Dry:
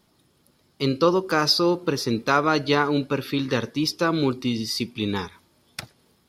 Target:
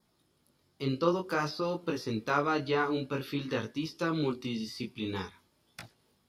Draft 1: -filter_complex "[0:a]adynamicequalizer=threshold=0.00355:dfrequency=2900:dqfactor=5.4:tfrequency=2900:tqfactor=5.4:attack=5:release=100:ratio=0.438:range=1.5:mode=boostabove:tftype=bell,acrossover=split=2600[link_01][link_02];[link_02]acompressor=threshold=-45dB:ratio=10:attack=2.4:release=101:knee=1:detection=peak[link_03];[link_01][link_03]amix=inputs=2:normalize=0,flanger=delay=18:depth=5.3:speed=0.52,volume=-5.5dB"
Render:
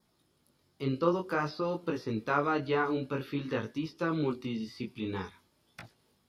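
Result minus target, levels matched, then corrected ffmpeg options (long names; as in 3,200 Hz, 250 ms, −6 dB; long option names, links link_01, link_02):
downward compressor: peak gain reduction +10.5 dB
-filter_complex "[0:a]adynamicequalizer=threshold=0.00355:dfrequency=2900:dqfactor=5.4:tfrequency=2900:tqfactor=5.4:attack=5:release=100:ratio=0.438:range=1.5:mode=boostabove:tftype=bell,acrossover=split=2600[link_01][link_02];[link_02]acompressor=threshold=-33.5dB:ratio=10:attack=2.4:release=101:knee=1:detection=peak[link_03];[link_01][link_03]amix=inputs=2:normalize=0,flanger=delay=18:depth=5.3:speed=0.52,volume=-5.5dB"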